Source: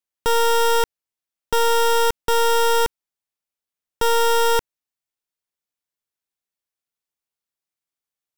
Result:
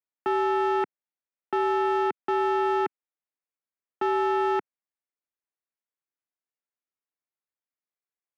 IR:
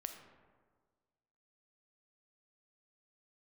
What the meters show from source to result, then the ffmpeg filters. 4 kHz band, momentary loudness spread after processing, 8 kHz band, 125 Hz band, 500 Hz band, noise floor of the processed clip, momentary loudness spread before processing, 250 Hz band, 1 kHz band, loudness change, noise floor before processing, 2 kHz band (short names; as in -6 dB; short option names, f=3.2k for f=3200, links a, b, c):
-20.0 dB, 7 LU, under -25 dB, under -15 dB, -6.0 dB, under -85 dBFS, 6 LU, +12.5 dB, -5.0 dB, -6.5 dB, under -85 dBFS, -8.0 dB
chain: -af "highpass=f=270:t=q:w=0.5412,highpass=f=270:t=q:w=1.307,lowpass=f=2.5k:t=q:w=0.5176,lowpass=f=2.5k:t=q:w=0.7071,lowpass=f=2.5k:t=q:w=1.932,afreqshift=-78,asoftclip=type=hard:threshold=-13dB,volume=-5dB"